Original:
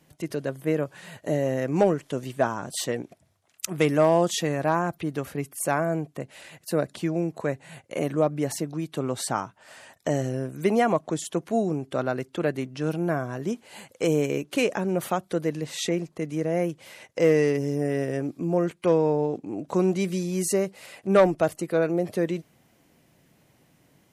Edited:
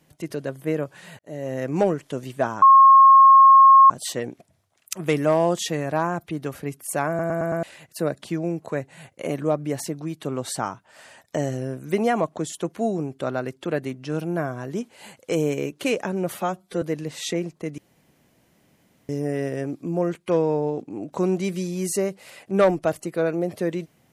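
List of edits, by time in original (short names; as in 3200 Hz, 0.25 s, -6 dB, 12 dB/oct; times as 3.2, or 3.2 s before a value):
1.19–1.64 fade in
2.62 add tone 1080 Hz -7.5 dBFS 1.28 s
5.8 stutter in place 0.11 s, 5 plays
15.06–15.38 stretch 1.5×
16.34–17.65 room tone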